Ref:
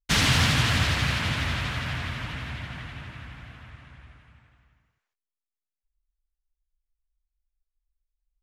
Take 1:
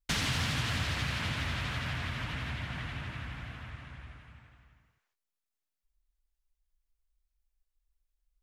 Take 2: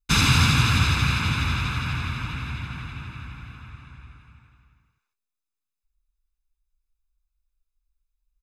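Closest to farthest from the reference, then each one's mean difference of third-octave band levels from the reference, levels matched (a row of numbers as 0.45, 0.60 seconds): 2, 1; 2.5, 5.0 decibels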